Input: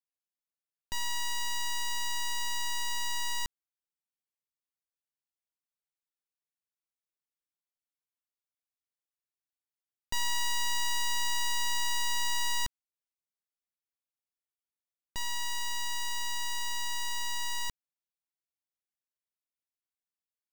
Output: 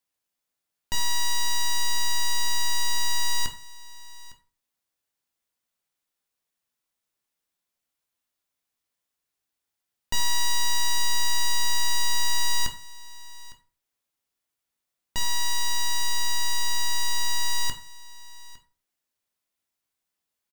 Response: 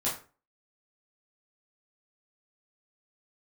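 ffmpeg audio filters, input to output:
-filter_complex "[0:a]asoftclip=type=tanh:threshold=0.0282,aecho=1:1:857:0.1,asplit=2[s0][s1];[1:a]atrim=start_sample=2205[s2];[s1][s2]afir=irnorm=-1:irlink=0,volume=0.355[s3];[s0][s3]amix=inputs=2:normalize=0,volume=2.37"

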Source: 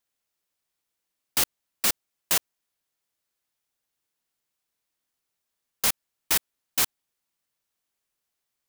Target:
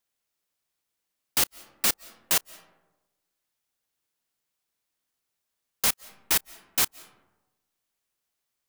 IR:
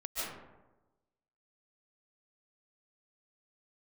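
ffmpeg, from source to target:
-filter_complex "[0:a]asplit=2[s0][s1];[1:a]atrim=start_sample=2205,adelay=31[s2];[s1][s2]afir=irnorm=-1:irlink=0,volume=0.0596[s3];[s0][s3]amix=inputs=2:normalize=0"

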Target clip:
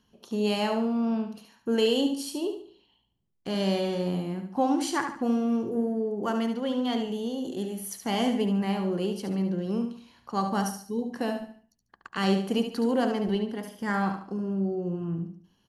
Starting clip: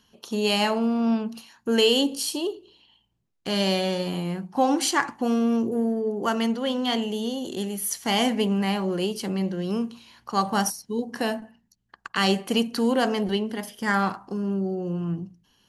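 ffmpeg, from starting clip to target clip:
-af "tiltshelf=f=1100:g=4,aecho=1:1:72|144|216|288:0.422|0.148|0.0517|0.0181,volume=0.501"

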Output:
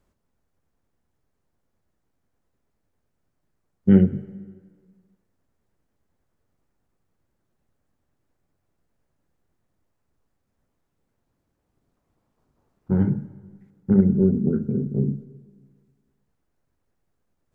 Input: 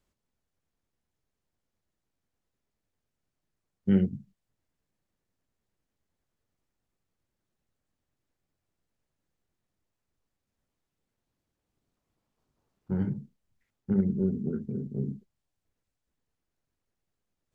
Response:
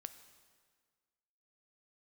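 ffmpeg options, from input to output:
-filter_complex "[0:a]asplit=2[s0][s1];[1:a]atrim=start_sample=2205,lowpass=2000[s2];[s1][s2]afir=irnorm=-1:irlink=0,volume=2.11[s3];[s0][s3]amix=inputs=2:normalize=0,volume=1.33"

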